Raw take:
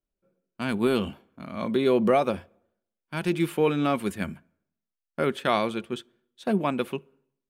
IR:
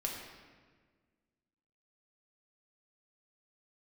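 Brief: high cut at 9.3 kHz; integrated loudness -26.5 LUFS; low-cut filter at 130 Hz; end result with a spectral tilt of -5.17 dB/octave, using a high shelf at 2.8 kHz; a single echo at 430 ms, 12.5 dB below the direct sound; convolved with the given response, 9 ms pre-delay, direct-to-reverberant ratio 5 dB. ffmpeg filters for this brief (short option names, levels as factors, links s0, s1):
-filter_complex "[0:a]highpass=130,lowpass=9300,highshelf=f=2800:g=-4,aecho=1:1:430:0.237,asplit=2[s0][s1];[1:a]atrim=start_sample=2205,adelay=9[s2];[s1][s2]afir=irnorm=-1:irlink=0,volume=0.422[s3];[s0][s3]amix=inputs=2:normalize=0,volume=0.944"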